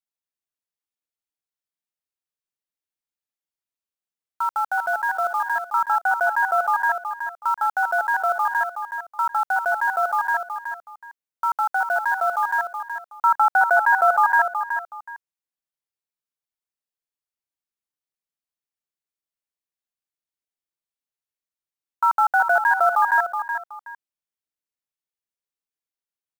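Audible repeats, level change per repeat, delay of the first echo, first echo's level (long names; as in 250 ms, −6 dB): 2, −11.5 dB, 372 ms, −8.0 dB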